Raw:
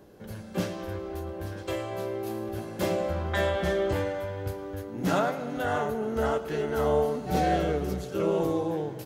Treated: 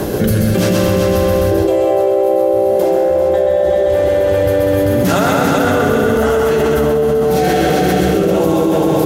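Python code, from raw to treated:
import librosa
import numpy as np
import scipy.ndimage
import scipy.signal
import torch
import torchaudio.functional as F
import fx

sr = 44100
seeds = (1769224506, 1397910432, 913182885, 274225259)

y = fx.band_shelf(x, sr, hz=540.0, db=14.0, octaves=1.7, at=(1.51, 3.7))
y = fx.rotary(y, sr, hz=0.9)
y = fx.high_shelf(y, sr, hz=9300.0, db=10.5)
y = fx.echo_feedback(y, sr, ms=130, feedback_pct=41, wet_db=-4)
y = 10.0 ** (-5.5 / 20.0) * np.tanh(y / 10.0 ** (-5.5 / 20.0))
y = fx.echo_heads(y, sr, ms=195, heads='first and second', feedback_pct=41, wet_db=-8.5)
y = fx.env_flatten(y, sr, amount_pct=100)
y = y * librosa.db_to_amplitude(-2.5)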